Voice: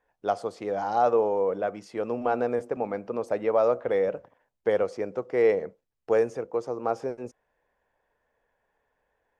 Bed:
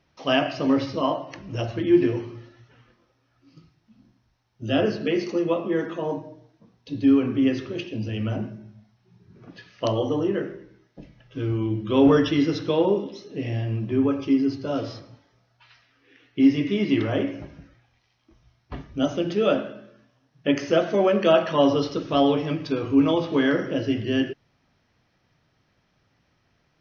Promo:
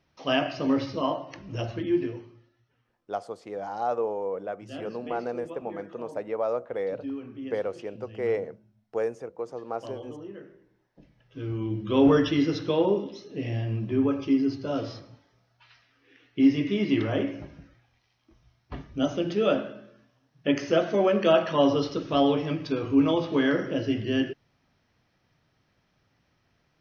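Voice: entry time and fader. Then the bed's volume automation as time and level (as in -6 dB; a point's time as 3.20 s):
2.85 s, -5.5 dB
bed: 1.73 s -3.5 dB
2.48 s -17 dB
10.43 s -17 dB
11.89 s -2.5 dB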